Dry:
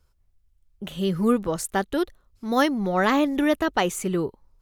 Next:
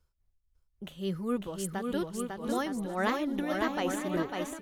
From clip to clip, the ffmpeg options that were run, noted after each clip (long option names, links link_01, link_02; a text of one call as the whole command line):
ffmpeg -i in.wav -af "aecho=1:1:550|907.5|1140|1291|1389:0.631|0.398|0.251|0.158|0.1,tremolo=f=3.6:d=0.55,volume=-7.5dB" out.wav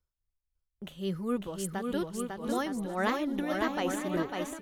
ffmpeg -i in.wav -af "agate=range=-11dB:threshold=-60dB:ratio=16:detection=peak" out.wav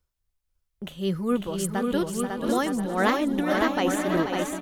ffmpeg -i in.wav -af "aecho=1:1:484:0.376,volume=6.5dB" out.wav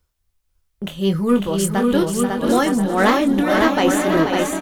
ffmpeg -i in.wav -filter_complex "[0:a]asplit=2[link_01][link_02];[link_02]asoftclip=type=hard:threshold=-22.5dB,volume=-3.5dB[link_03];[link_01][link_03]amix=inputs=2:normalize=0,asplit=2[link_04][link_05];[link_05]adelay=25,volume=-8.5dB[link_06];[link_04][link_06]amix=inputs=2:normalize=0,volume=3.5dB" out.wav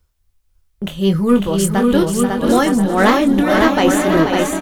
ffmpeg -i in.wav -af "lowshelf=frequency=110:gain=6,volume=2.5dB" out.wav